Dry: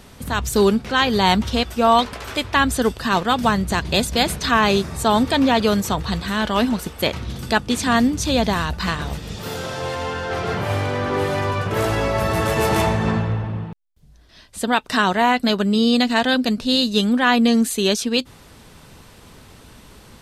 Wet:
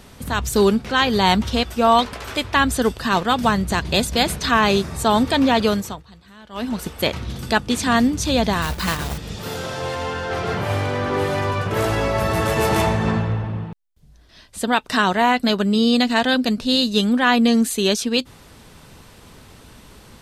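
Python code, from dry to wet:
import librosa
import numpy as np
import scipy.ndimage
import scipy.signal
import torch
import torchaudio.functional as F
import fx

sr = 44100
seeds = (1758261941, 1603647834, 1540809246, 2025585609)

y = fx.block_float(x, sr, bits=3, at=(8.62, 9.18))
y = fx.edit(y, sr, fx.fade_down_up(start_s=5.66, length_s=1.2, db=-22.5, fade_s=0.37), tone=tone)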